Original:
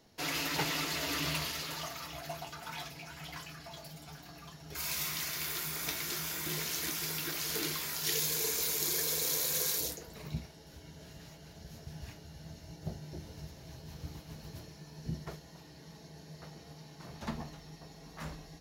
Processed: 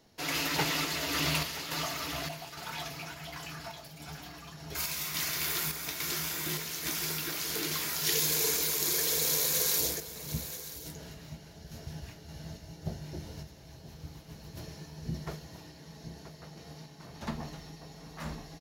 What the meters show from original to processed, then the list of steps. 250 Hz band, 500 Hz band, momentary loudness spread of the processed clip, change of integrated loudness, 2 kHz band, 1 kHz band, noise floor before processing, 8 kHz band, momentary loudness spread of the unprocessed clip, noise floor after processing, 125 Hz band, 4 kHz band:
+3.0 dB, +3.5 dB, 22 LU, +3.0 dB, +3.0 dB, +3.5 dB, -54 dBFS, +3.5 dB, 21 LU, -51 dBFS, +3.0 dB, +3.5 dB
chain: on a send: echo 0.979 s -10 dB; on the sum: random-step tremolo; gain +5 dB

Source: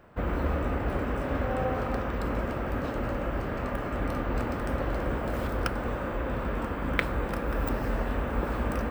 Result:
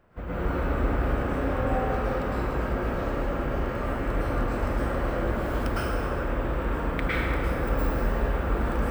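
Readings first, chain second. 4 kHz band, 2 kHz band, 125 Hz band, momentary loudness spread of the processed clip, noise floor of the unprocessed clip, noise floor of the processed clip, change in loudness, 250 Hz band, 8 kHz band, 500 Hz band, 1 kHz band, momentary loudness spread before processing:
+1.5 dB, +2.0 dB, +3.0 dB, 3 LU, -33 dBFS, -30 dBFS, +2.5 dB, +2.0 dB, +1.0 dB, +2.5 dB, +2.5 dB, 3 LU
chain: low shelf 63 Hz +6.5 dB; plate-style reverb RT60 1.7 s, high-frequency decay 0.8×, pre-delay 95 ms, DRR -9.5 dB; gain -8 dB

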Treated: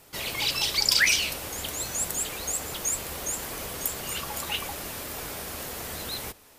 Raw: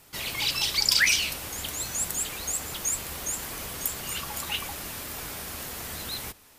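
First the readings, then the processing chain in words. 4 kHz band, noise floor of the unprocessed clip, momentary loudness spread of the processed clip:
0.0 dB, -55 dBFS, 13 LU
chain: bell 510 Hz +5 dB 1.3 oct

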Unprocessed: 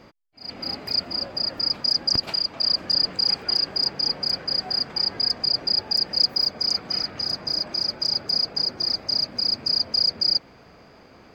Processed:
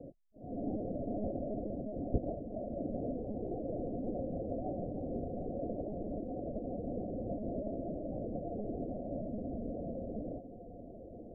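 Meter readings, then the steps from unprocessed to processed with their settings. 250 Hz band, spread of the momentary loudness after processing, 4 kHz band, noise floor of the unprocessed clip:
+3.0 dB, 5 LU, under -40 dB, -50 dBFS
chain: steep low-pass 710 Hz 96 dB/oct; monotone LPC vocoder at 8 kHz 210 Hz; gain +2.5 dB

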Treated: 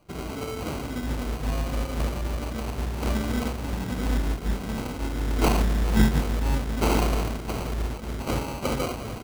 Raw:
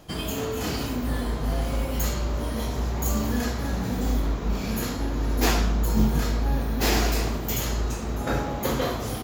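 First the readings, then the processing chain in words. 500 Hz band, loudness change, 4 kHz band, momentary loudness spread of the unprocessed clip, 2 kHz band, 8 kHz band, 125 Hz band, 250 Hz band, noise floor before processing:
-1.0 dB, -1.0 dB, -4.0 dB, 6 LU, -2.0 dB, -5.5 dB, -1.0 dB, -0.5 dB, -31 dBFS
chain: sample-and-hold 25×; upward expander 1.5:1, over -42 dBFS; gain +2.5 dB

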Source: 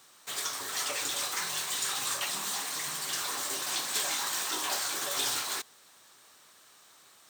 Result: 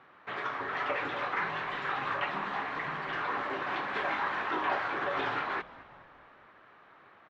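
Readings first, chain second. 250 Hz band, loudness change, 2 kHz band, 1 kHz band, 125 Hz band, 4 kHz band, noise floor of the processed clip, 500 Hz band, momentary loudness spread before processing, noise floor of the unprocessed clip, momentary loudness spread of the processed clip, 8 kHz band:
+6.5 dB, -2.0 dB, +4.5 dB, +6.5 dB, +6.5 dB, -12.0 dB, -58 dBFS, +6.5 dB, 4 LU, -59 dBFS, 5 LU, under -35 dB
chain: LPF 2100 Hz 24 dB/oct; on a send: frequency-shifting echo 0.211 s, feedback 57%, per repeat -110 Hz, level -19 dB; on the sum: gain +6.5 dB

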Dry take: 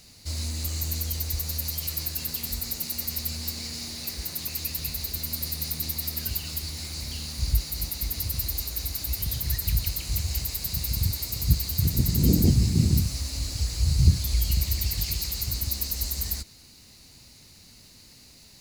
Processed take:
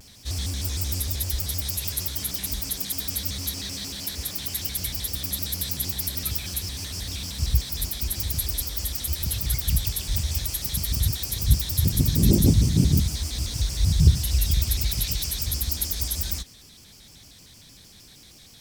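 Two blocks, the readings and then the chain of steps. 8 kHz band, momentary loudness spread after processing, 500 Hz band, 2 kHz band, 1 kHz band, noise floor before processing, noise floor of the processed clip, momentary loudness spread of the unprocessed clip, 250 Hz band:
+3.5 dB, 9 LU, +3.0 dB, +2.0 dB, +2.0 dB, -52 dBFS, -50 dBFS, 9 LU, +2.0 dB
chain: shaped vibrato square 6.5 Hz, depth 250 cents; gain +2 dB

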